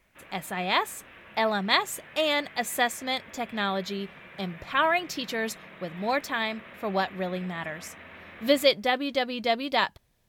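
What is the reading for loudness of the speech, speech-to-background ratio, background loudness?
−28.0 LKFS, 18.5 dB, −46.5 LKFS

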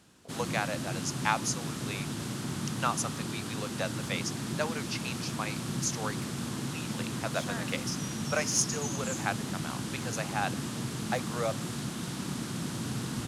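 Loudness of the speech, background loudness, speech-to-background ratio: −35.0 LKFS, −35.5 LKFS, 0.5 dB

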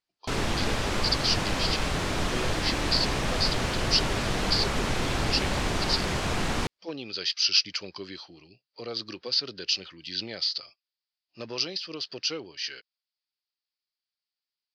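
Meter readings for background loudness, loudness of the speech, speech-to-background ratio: −28.5 LKFS, −29.0 LKFS, −0.5 dB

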